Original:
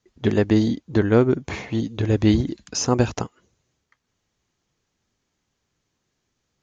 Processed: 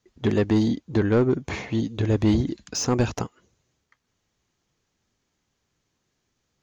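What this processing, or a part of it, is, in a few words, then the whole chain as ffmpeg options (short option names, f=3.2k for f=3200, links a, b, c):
saturation between pre-emphasis and de-emphasis: -af "highshelf=f=2.5k:g=9.5,asoftclip=type=tanh:threshold=-12.5dB,highshelf=f=2.5k:g=-9.5"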